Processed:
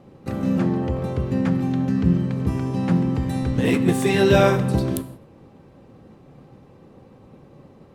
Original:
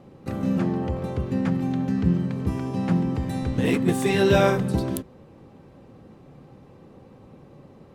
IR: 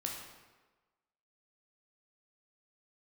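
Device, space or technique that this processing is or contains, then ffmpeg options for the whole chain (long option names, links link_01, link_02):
keyed gated reverb: -filter_complex "[0:a]asplit=3[link_01][link_02][link_03];[1:a]atrim=start_sample=2205[link_04];[link_02][link_04]afir=irnorm=-1:irlink=0[link_05];[link_03]apad=whole_len=350551[link_06];[link_05][link_06]sidechaingate=range=-33dB:threshold=-45dB:ratio=16:detection=peak,volume=-8.5dB[link_07];[link_01][link_07]amix=inputs=2:normalize=0"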